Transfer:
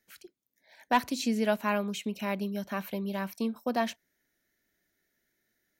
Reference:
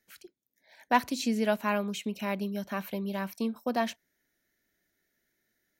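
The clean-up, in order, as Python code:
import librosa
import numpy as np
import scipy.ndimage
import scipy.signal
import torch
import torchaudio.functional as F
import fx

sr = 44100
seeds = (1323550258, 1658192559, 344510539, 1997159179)

y = fx.fix_declip(x, sr, threshold_db=-15.5)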